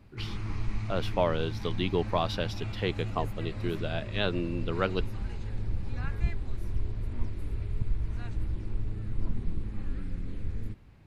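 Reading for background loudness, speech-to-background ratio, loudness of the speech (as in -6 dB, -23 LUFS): -37.0 LUFS, 4.5 dB, -32.5 LUFS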